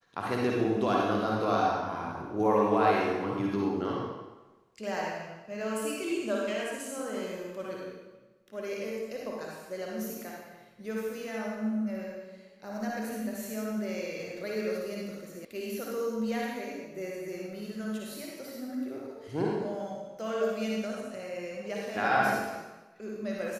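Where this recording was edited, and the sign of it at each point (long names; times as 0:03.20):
0:15.45: cut off before it has died away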